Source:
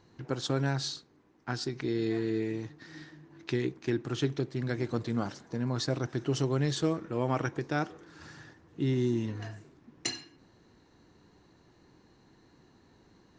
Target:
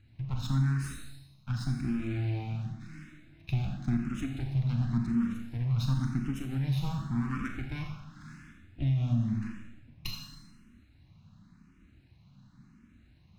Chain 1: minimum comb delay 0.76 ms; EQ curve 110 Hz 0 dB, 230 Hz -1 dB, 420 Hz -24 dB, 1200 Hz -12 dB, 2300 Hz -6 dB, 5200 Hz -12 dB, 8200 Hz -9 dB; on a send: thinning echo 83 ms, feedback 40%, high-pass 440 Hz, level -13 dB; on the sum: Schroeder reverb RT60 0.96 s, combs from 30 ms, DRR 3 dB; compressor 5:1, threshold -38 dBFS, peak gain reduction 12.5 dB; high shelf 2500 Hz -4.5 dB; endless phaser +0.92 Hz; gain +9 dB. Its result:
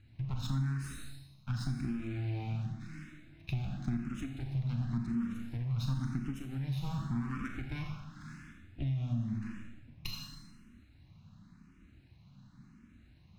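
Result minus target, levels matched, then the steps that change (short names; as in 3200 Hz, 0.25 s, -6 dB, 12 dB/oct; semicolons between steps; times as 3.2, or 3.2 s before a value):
compressor: peak gain reduction +6 dB
change: compressor 5:1, threshold -30.5 dBFS, peak gain reduction 6.5 dB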